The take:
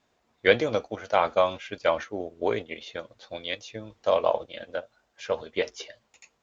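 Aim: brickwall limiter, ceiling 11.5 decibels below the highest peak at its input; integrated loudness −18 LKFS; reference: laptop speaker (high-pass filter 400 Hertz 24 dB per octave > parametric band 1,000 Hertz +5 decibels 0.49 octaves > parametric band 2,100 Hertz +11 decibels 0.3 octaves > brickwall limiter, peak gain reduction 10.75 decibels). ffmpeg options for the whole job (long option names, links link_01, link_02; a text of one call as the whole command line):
ffmpeg -i in.wav -af "alimiter=limit=-15.5dB:level=0:latency=1,highpass=frequency=400:width=0.5412,highpass=frequency=400:width=1.3066,equalizer=frequency=1000:width_type=o:width=0.49:gain=5,equalizer=frequency=2100:width_type=o:width=0.3:gain=11,volume=17.5dB,alimiter=limit=-4.5dB:level=0:latency=1" out.wav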